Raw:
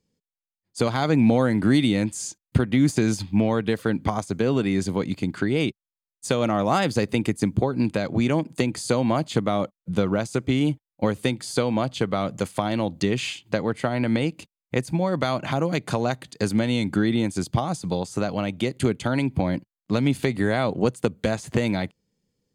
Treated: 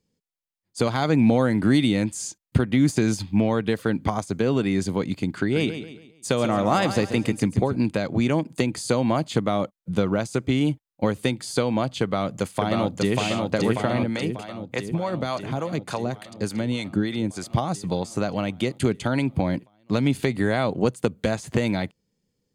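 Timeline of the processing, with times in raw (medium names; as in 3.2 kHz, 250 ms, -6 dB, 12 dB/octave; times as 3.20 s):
5.39–7.76 s: feedback delay 138 ms, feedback 39%, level -10 dB
12.02–13.17 s: echo throw 590 ms, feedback 70%, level -2.5 dB
14.03–17.50 s: harmonic tremolo 3.4 Hz, crossover 520 Hz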